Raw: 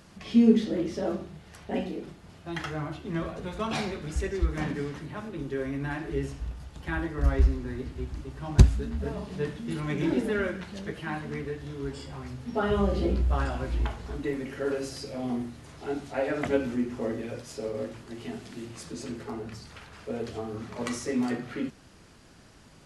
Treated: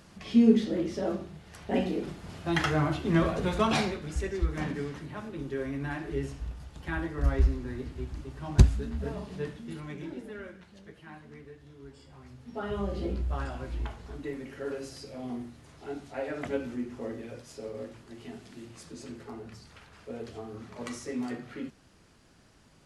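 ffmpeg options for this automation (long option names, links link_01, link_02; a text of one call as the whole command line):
ffmpeg -i in.wav -af "volume=15dB,afade=type=in:start_time=1.47:duration=0.88:silence=0.398107,afade=type=out:start_time=3.52:duration=0.49:silence=0.354813,afade=type=out:start_time=9.14:duration=0.97:silence=0.251189,afade=type=in:start_time=11.97:duration=1.08:silence=0.398107" out.wav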